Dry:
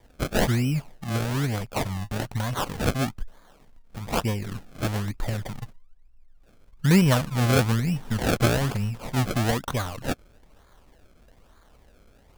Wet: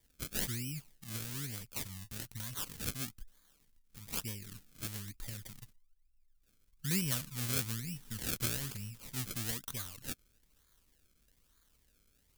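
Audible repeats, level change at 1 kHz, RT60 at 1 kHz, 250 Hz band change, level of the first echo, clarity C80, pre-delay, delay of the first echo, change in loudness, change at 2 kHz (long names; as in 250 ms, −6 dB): no echo audible, −22.0 dB, no reverb audible, −18.0 dB, no echo audible, no reverb audible, no reverb audible, no echo audible, −12.5 dB, −14.5 dB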